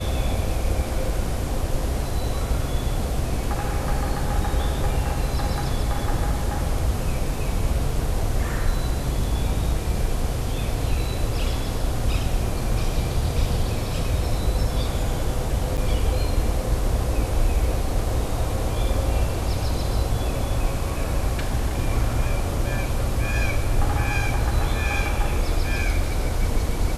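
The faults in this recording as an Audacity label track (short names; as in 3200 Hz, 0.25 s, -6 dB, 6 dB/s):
15.770000	15.780000	gap 7.4 ms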